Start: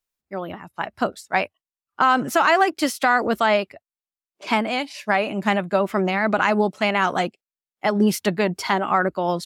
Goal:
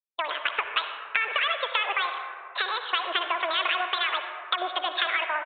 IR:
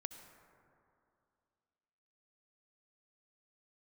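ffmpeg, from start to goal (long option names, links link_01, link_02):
-filter_complex "[0:a]highpass=frequency=310:width=0.5412,highpass=frequency=310:width=1.3066,agate=range=-33dB:threshold=-37dB:ratio=3:detection=peak,acompressor=threshold=-32dB:ratio=12,crystalizer=i=8:c=0[link_01];[1:a]atrim=start_sample=2205,asetrate=29547,aresample=44100[link_02];[link_01][link_02]afir=irnorm=-1:irlink=0,asetrate=76440,aresample=44100,aresample=8000,aresample=44100,volume=7dB"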